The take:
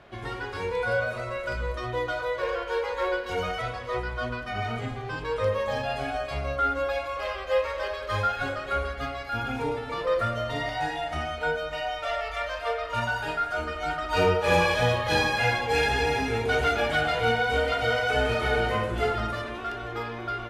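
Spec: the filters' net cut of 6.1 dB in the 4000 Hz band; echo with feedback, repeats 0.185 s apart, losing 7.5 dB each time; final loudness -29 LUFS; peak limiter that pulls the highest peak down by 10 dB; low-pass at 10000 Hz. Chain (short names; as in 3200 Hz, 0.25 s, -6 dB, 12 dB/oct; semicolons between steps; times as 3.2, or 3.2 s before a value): LPF 10000 Hz; bell 4000 Hz -8.5 dB; limiter -20.5 dBFS; feedback echo 0.185 s, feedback 42%, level -7.5 dB; gain +0.5 dB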